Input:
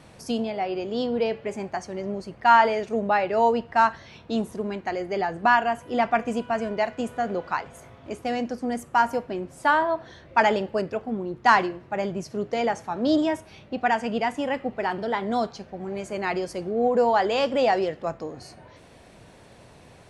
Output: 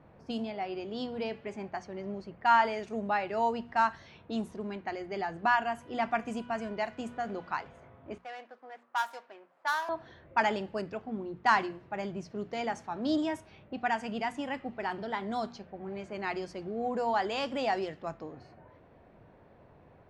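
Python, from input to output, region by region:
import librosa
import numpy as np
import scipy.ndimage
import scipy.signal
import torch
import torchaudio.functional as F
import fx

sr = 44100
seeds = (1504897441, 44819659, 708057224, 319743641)

y = fx.chain(x, sr, fx.median_filter(points=15),
    fx.highpass(hz=1000.0, slope=12),
    fx.high_shelf(hz=8700.0, db=9.5), at=(8.18, 9.89))
y = fx.env_lowpass(y, sr, base_hz=1300.0, full_db=-21.0)
y = fx.dynamic_eq(y, sr, hz=510.0, q=2.6, threshold_db=-38.0, ratio=4.0, max_db=-7)
y = fx.hum_notches(y, sr, base_hz=60, count=4)
y = y * librosa.db_to_amplitude(-6.5)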